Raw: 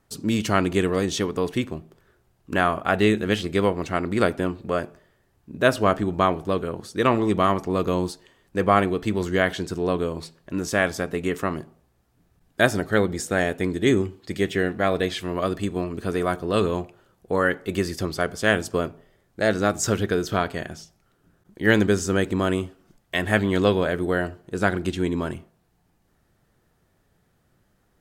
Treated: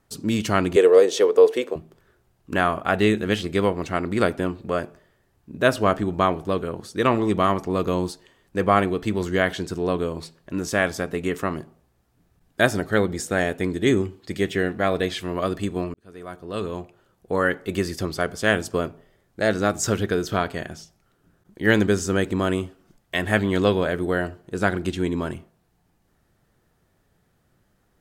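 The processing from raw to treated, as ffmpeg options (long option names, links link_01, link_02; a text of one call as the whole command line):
ffmpeg -i in.wav -filter_complex "[0:a]asettb=1/sr,asplit=3[link_01][link_02][link_03];[link_01]atrim=end=0.764[link_04];[link_02]atrim=start=0.76:end=1.76,asetpts=PTS-STARTPTS,afade=type=in:duration=0.004:curve=qsin,afade=type=out:start_time=0.996:duration=0.004:curve=qsin,highpass=frequency=470:width_type=q:width=5.2[link_05];[link_03]atrim=start=1.756[link_06];[link_04][link_05]acrossfade=duration=0.004:curve1=hsin:curve2=qsin[link_07];[link_07][link_06]acrossfade=duration=0.004:curve1=qsin:curve2=hsin,asplit=2[link_08][link_09];[link_08]atrim=end=15.94,asetpts=PTS-STARTPTS,afade=type=out:start_time=15.936:duration=0.004:curve=hsin[link_10];[link_09]atrim=start=15.94,asetpts=PTS-STARTPTS,afade=type=in:duration=1.49[link_11];[link_10][link_11]concat=n=2:v=0:a=1" out.wav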